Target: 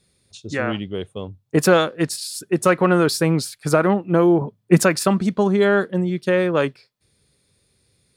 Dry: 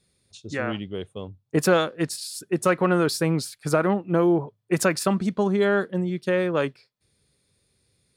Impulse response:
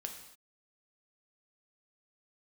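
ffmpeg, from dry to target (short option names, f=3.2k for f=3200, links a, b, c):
-filter_complex "[0:a]asettb=1/sr,asplit=3[a][b][c];[a]atrim=end=4.414[d];[b]atrim=start=4.41:end=4.82,asetpts=PTS-STARTPTS,afade=t=in:d=0.004:c=qsin,afade=t=out:st=0.406:d=0.004:c=qsin,equalizer=f=210:t=o:w=0.92:g=12[e];[c]atrim=start=4.816[f];[d][e]acrossfade=d=0.004:c1=hsin:c2=qsin[g];[g][f]acrossfade=d=0.004:c1=qsin:c2=hsin,volume=4.5dB"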